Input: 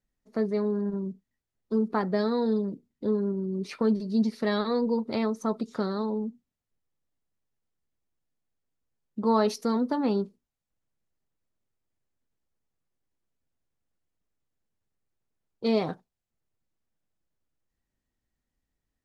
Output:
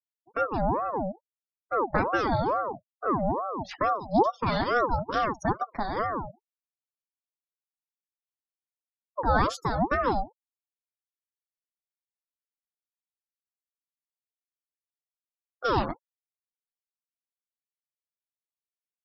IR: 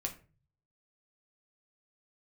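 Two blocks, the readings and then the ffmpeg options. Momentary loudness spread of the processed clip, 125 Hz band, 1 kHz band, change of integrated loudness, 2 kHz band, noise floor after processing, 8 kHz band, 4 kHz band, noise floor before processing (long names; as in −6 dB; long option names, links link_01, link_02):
10 LU, +3.0 dB, +8.5 dB, +0.5 dB, +9.0 dB, below −85 dBFS, can't be measured, 0.0 dB, below −85 dBFS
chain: -af "afftfilt=real='re*gte(hypot(re,im),0.00891)':imag='im*gte(hypot(re,im),0.00891)':win_size=1024:overlap=0.75,flanger=delay=2.5:depth=9.3:regen=-16:speed=0.56:shape=triangular,aeval=exprs='val(0)*sin(2*PI*670*n/s+670*0.45/2.3*sin(2*PI*2.3*n/s))':channel_layout=same,volume=6.5dB"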